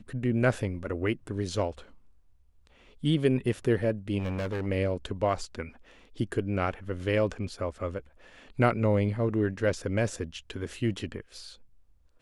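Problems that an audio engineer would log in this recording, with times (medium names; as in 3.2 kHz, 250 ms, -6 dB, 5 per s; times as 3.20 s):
4.18–4.67 s: clipped -28 dBFS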